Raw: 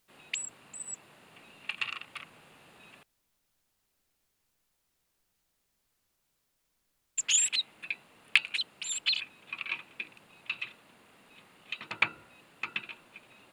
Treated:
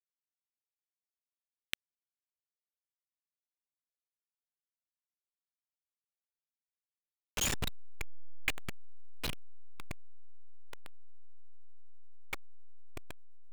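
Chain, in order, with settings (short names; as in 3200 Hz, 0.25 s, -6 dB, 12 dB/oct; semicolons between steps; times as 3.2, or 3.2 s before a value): level-crossing sampler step -17.5 dBFS; Doppler pass-by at 2.78, 17 m/s, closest 4.6 m; sample leveller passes 1; gain +13 dB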